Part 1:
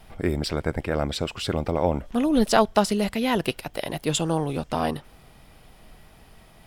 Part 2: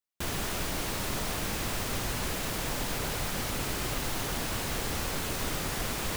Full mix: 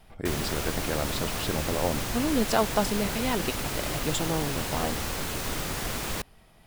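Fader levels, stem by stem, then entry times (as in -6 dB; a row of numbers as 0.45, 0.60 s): -5.5, +1.0 dB; 0.00, 0.05 s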